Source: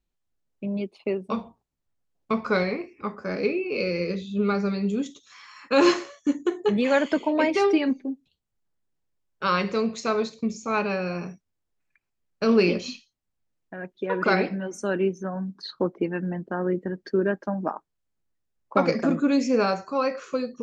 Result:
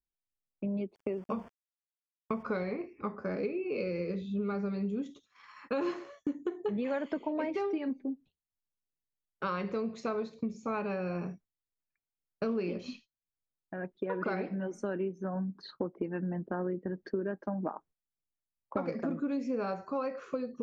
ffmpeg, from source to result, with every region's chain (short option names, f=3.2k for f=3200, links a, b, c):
-filter_complex "[0:a]asettb=1/sr,asplit=3[a][b][c];[a]atrim=end=0.954[d];[b]atrim=start=0.95:end=2.43,asetpts=PTS-STARTPTS,afade=t=in:d=0.004:c=qsin,afade=t=out:st=1.476:d=0.004:c=qsin,aeval=exprs='val(0)*gte(abs(val(0)),0.00668)':c=same,asuperstop=centerf=3900:order=4:qfactor=4.3[e];[c]atrim=start=2.426[f];[d][e]acrossfade=d=0.004:c1=hsin:c2=qsin[g];[g][f]acrossfade=d=0.004:c1=qsin:c2=hsin,lowpass=f=1.3k:p=1,agate=range=-15dB:threshold=-52dB:ratio=16:detection=peak,acompressor=threshold=-30dB:ratio=5,volume=-1dB"